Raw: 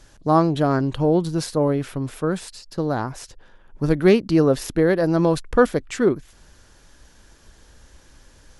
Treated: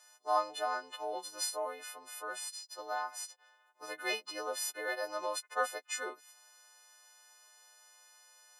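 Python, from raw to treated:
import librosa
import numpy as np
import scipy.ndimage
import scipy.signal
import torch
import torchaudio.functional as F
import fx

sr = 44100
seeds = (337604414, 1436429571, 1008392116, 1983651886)

y = fx.freq_snap(x, sr, grid_st=3)
y = fx.ladder_highpass(y, sr, hz=600.0, resonance_pct=35)
y = F.gain(torch.from_numpy(y), -6.5).numpy()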